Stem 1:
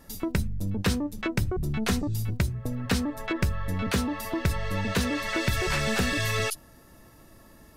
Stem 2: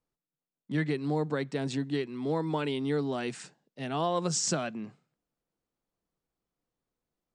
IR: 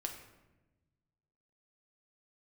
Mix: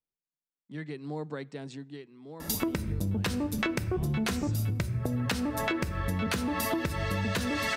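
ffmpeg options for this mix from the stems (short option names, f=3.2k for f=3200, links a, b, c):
-filter_complex "[0:a]acompressor=threshold=-32dB:ratio=6,highpass=62,acontrast=73,adelay=2400,volume=2.5dB,asplit=2[a][b];[b]volume=-3.5dB[c];[1:a]dynaudnorm=f=620:g=3:m=7dB,volume=-13dB,afade=t=out:st=1.31:d=0.78:silence=0.334965,asplit=2[d][e];[e]volume=-21dB[f];[2:a]atrim=start_sample=2205[g];[c][f]amix=inputs=2:normalize=0[h];[h][g]afir=irnorm=-1:irlink=0[i];[a][d][i]amix=inputs=3:normalize=0,acompressor=threshold=-27dB:ratio=6"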